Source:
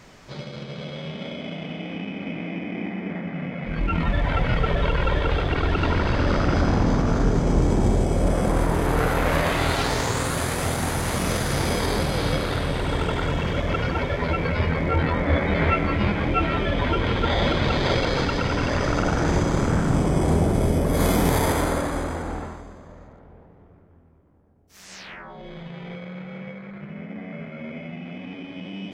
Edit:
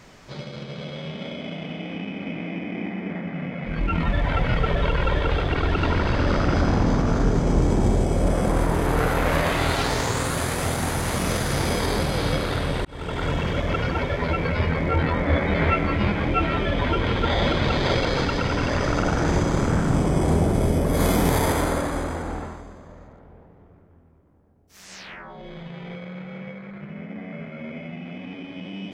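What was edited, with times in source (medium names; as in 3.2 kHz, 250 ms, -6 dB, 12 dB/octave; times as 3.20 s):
12.85–13.28 s: fade in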